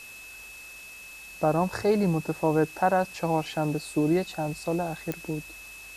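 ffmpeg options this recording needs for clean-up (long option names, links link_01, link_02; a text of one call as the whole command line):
ffmpeg -i in.wav -af "adeclick=threshold=4,bandreject=frequency=2600:width=30,afwtdn=0.004" out.wav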